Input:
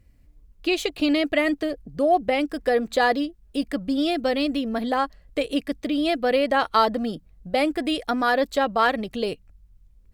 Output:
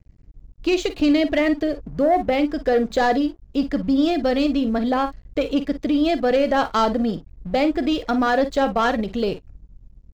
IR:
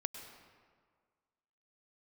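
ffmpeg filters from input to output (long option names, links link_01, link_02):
-af "aresample=16000,asoftclip=type=tanh:threshold=-15dB,aresample=44100,lowshelf=frequency=130:gain=8,aecho=1:1:44|55:0.2|0.188,aeval=exprs='sgn(val(0))*max(abs(val(0))-0.00316,0)':channel_layout=same,equalizer=frequency=3000:width=0.4:gain=-4,volume=4.5dB"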